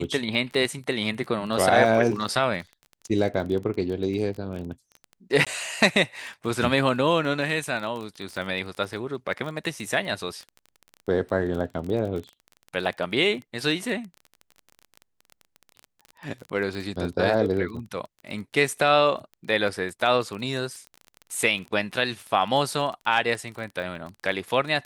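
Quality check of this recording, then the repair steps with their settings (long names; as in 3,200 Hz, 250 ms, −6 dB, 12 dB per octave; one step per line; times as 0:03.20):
surface crackle 21 per second −31 dBFS
0:05.45–0:05.47: drop-out 16 ms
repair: click removal
repair the gap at 0:05.45, 16 ms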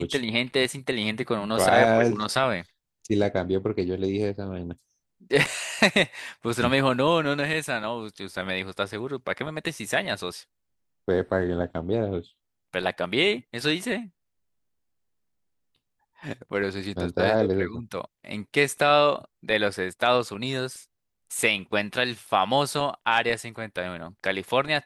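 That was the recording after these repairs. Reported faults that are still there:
none of them is left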